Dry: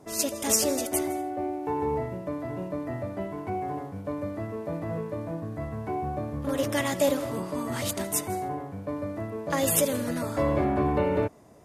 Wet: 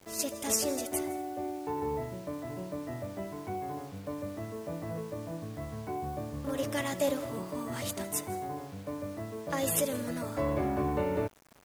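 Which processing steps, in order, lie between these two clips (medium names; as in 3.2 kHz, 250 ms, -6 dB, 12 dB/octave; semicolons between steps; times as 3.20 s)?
word length cut 8-bit, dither none; trim -5.5 dB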